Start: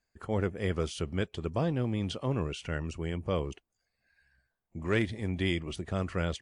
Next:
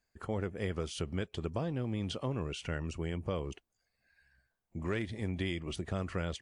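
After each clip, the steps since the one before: compressor, threshold -31 dBFS, peak gain reduction 8 dB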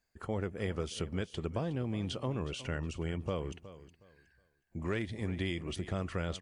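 feedback echo 0.366 s, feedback 25%, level -15.5 dB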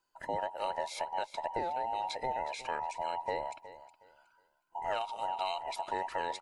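band inversion scrambler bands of 1000 Hz

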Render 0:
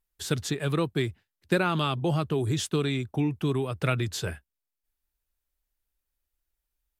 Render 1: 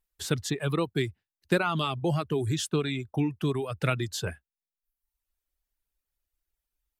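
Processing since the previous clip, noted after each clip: reverb removal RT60 0.84 s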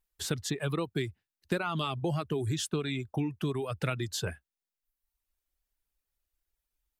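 compressor 2.5:1, threshold -29 dBFS, peak gain reduction 7.5 dB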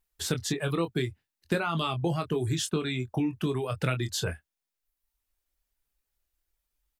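doubler 24 ms -8 dB; gain +2.5 dB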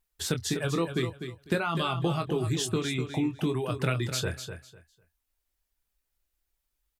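feedback echo 0.25 s, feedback 21%, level -9 dB

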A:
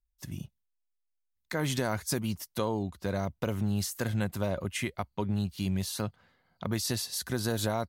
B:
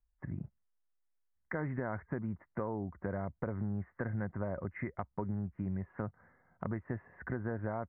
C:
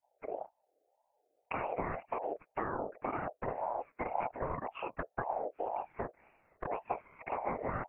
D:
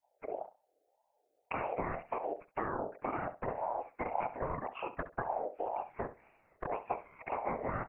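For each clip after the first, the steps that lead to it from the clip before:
steep low-pass 2000 Hz 72 dB/oct; compressor 2.5:1, threshold -39 dBFS, peak gain reduction 9.5 dB; gain +2 dB
frequency shift -96 Hz; whisperiser; ring modulator with a swept carrier 660 Hz, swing 20%, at 1.9 Hz; gain +3.5 dB
feedback echo 67 ms, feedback 16%, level -14 dB

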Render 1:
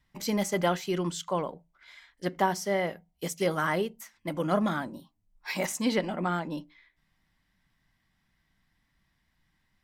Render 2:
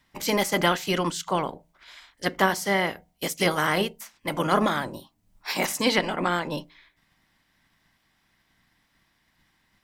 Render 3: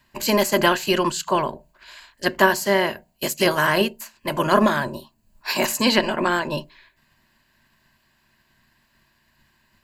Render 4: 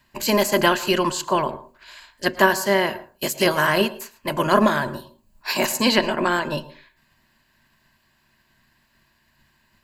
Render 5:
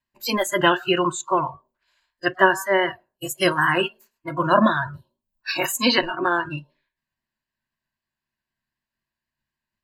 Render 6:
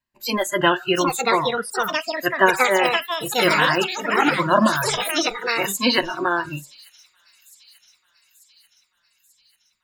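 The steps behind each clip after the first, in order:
spectral limiter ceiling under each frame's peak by 14 dB; gain +4.5 dB
ripple EQ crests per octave 1.4, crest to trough 9 dB; gain +3.5 dB
reverb RT60 0.30 s, pre-delay 0.102 s, DRR 16.5 dB
spectral noise reduction 25 dB; vibrato 3.9 Hz 33 cents; gain +1 dB
echoes that change speed 0.792 s, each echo +5 st, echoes 3; thin delay 0.889 s, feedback 59%, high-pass 5300 Hz, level -17.5 dB

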